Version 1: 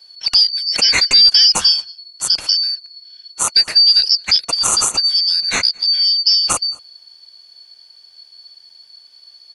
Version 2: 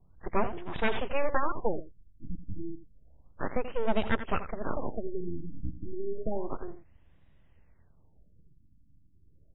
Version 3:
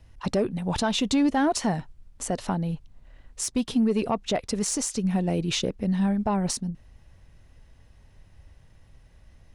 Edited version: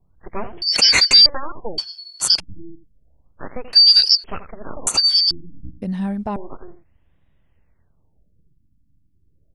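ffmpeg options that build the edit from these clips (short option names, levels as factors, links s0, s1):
-filter_complex "[0:a]asplit=4[s0][s1][s2][s3];[1:a]asplit=6[s4][s5][s6][s7][s8][s9];[s4]atrim=end=0.622[s10];[s0]atrim=start=0.618:end=1.262[s11];[s5]atrim=start=1.258:end=1.782[s12];[s1]atrim=start=1.778:end=2.402[s13];[s6]atrim=start=2.398:end=3.732[s14];[s2]atrim=start=3.728:end=4.242[s15];[s7]atrim=start=4.238:end=4.872[s16];[s3]atrim=start=4.868:end=5.312[s17];[s8]atrim=start=5.308:end=5.822[s18];[2:a]atrim=start=5.818:end=6.362[s19];[s9]atrim=start=6.358[s20];[s10][s11]acrossfade=d=0.004:c1=hsin:c2=hsin[s21];[s21][s12]acrossfade=d=0.004:c1=hsin:c2=hsin[s22];[s22][s13]acrossfade=d=0.004:c1=hsin:c2=hsin[s23];[s23][s14]acrossfade=d=0.004:c1=hsin:c2=hsin[s24];[s24][s15]acrossfade=d=0.004:c1=hsin:c2=hsin[s25];[s25][s16]acrossfade=d=0.004:c1=hsin:c2=hsin[s26];[s26][s17]acrossfade=d=0.004:c1=hsin:c2=hsin[s27];[s27][s18]acrossfade=d=0.004:c1=hsin:c2=hsin[s28];[s28][s19]acrossfade=d=0.004:c1=hsin:c2=hsin[s29];[s29][s20]acrossfade=d=0.004:c1=hsin:c2=hsin"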